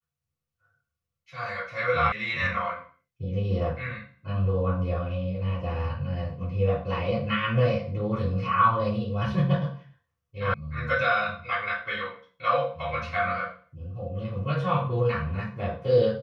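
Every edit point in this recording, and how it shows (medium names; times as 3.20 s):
2.12 s: sound stops dead
10.54 s: sound stops dead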